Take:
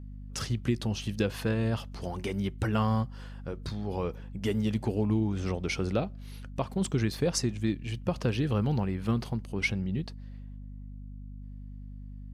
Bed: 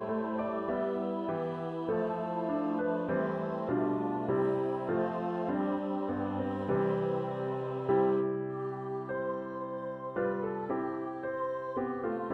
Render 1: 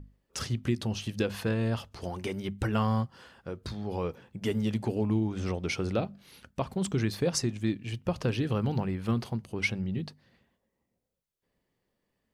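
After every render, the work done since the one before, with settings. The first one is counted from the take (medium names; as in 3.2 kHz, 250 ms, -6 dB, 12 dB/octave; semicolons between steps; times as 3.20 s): hum notches 50/100/150/200/250 Hz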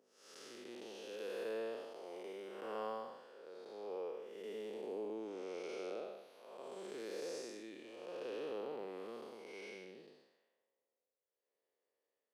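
spectral blur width 312 ms; ladder high-pass 390 Hz, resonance 50%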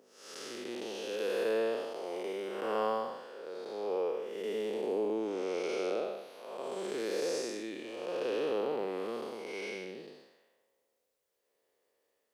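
trim +10.5 dB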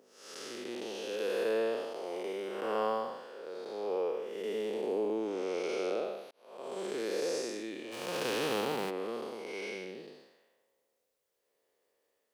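6.31–6.80 s: fade in; 7.91–8.89 s: formants flattened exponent 0.6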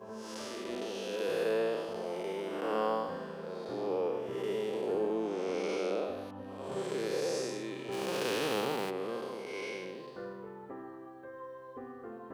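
add bed -11.5 dB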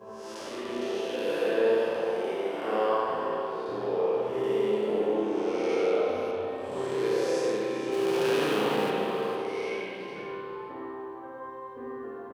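delay 454 ms -10.5 dB; spring tank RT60 2 s, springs 33/53 ms, chirp 65 ms, DRR -4 dB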